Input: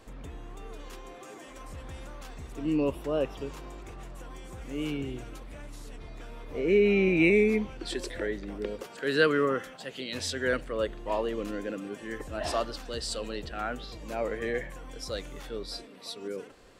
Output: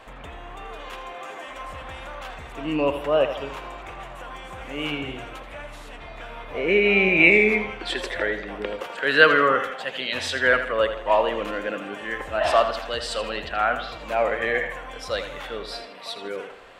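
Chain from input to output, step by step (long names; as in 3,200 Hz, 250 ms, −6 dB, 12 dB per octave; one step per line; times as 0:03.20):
flat-topped bell 1,400 Hz +12 dB 3 octaves
on a send: tape delay 81 ms, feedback 47%, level −9 dB, low-pass 6,000 Hz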